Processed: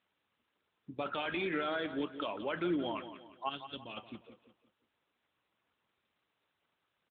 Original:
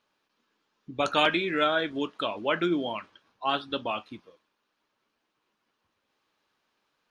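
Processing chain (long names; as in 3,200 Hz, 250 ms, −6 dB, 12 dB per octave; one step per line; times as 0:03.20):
0:03.49–0:03.97: parametric band 830 Hz −14.5 dB 2.9 octaves
brickwall limiter −19.5 dBFS, peak gain reduction 11.5 dB
repeating echo 175 ms, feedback 40%, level −11.5 dB
level −5 dB
AMR narrowband 12.2 kbit/s 8,000 Hz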